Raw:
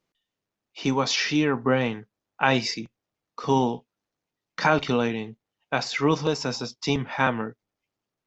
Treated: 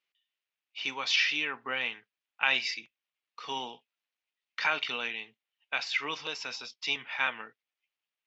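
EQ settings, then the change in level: band-pass filter 2.7 kHz, Q 2; +3.0 dB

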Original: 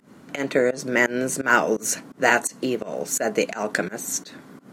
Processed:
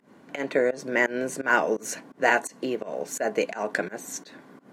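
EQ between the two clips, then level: bass shelf 230 Hz -12 dB; treble shelf 3.2 kHz -11 dB; band-stop 1.3 kHz, Q 7.7; 0.0 dB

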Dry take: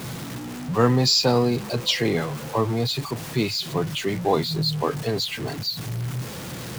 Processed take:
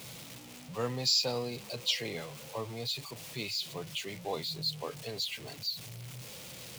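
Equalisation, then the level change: resonant low shelf 490 Hz -9.5 dB, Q 1.5; high-order bell 1.1 kHz -10 dB; -7.5 dB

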